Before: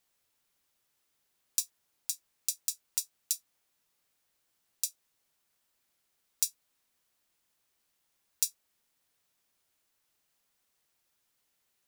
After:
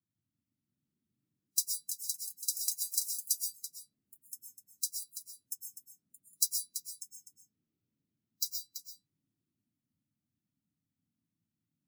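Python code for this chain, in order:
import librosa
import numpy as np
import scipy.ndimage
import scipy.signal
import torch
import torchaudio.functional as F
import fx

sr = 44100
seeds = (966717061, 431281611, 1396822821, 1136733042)

y = fx.spec_quant(x, sr, step_db=30)
y = fx.peak_eq(y, sr, hz=9500.0, db=-13.5, octaves=0.52, at=(6.46, 8.46))
y = fx.dmg_noise_band(y, sr, seeds[0], low_hz=87.0, high_hz=290.0, level_db=-78.0)
y = fx.low_shelf(y, sr, hz=200.0, db=4.0)
y = y + 10.0 ** (-7.0 / 20.0) * np.pad(y, (int(334 * sr / 1000.0), 0))[:len(y)]
y = fx.echo_pitch(y, sr, ms=708, semitones=5, count=3, db_per_echo=-6.0)
y = fx.rev_freeverb(y, sr, rt60_s=0.46, hf_ratio=0.6, predelay_ms=85, drr_db=2.0)
y = fx.spectral_expand(y, sr, expansion=1.5)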